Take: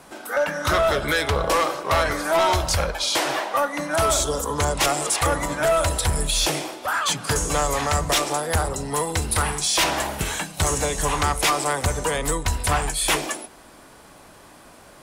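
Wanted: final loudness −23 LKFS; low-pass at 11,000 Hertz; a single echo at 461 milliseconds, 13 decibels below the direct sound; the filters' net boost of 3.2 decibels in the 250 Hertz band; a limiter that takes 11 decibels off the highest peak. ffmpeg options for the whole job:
ffmpeg -i in.wav -af "lowpass=11000,equalizer=frequency=250:width_type=o:gain=4.5,alimiter=limit=-22.5dB:level=0:latency=1,aecho=1:1:461:0.224,volume=6.5dB" out.wav

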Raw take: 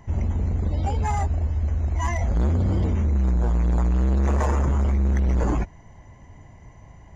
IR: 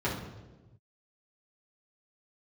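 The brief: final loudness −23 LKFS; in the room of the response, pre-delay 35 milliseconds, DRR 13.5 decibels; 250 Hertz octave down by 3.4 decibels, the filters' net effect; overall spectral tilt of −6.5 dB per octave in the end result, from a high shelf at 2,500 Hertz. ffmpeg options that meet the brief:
-filter_complex "[0:a]equalizer=frequency=250:width_type=o:gain=-5,highshelf=frequency=2500:gain=8,asplit=2[link_01][link_02];[1:a]atrim=start_sample=2205,adelay=35[link_03];[link_02][link_03]afir=irnorm=-1:irlink=0,volume=-23dB[link_04];[link_01][link_04]amix=inputs=2:normalize=0,volume=0.5dB"

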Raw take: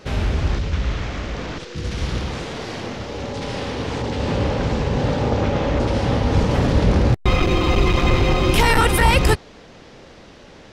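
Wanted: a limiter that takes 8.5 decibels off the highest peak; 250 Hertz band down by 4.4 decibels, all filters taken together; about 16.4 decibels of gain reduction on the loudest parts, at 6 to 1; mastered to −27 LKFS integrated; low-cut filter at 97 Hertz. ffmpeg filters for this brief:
ffmpeg -i in.wav -af "highpass=97,equalizer=frequency=250:width_type=o:gain=-6,acompressor=threshold=-32dB:ratio=6,volume=12dB,alimiter=limit=-17.5dB:level=0:latency=1" out.wav

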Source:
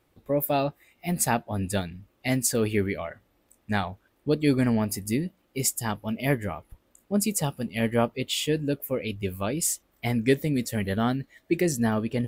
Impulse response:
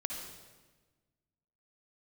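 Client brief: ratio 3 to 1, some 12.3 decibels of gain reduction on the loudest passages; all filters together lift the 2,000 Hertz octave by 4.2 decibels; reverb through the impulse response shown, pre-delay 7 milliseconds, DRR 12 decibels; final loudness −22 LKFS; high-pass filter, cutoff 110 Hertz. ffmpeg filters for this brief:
-filter_complex "[0:a]highpass=110,equalizer=frequency=2000:width_type=o:gain=5,acompressor=threshold=-33dB:ratio=3,asplit=2[link_01][link_02];[1:a]atrim=start_sample=2205,adelay=7[link_03];[link_02][link_03]afir=irnorm=-1:irlink=0,volume=-13.5dB[link_04];[link_01][link_04]amix=inputs=2:normalize=0,volume=13dB"

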